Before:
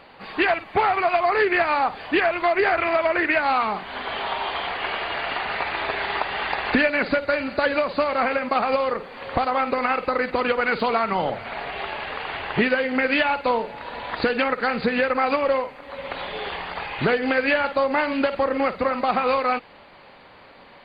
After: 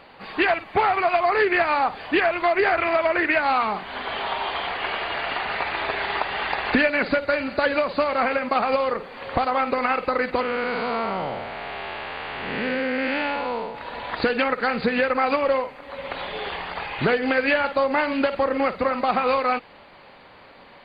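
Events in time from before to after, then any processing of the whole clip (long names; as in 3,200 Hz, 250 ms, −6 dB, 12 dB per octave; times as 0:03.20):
0:10.41–0:13.75: spectrum smeared in time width 264 ms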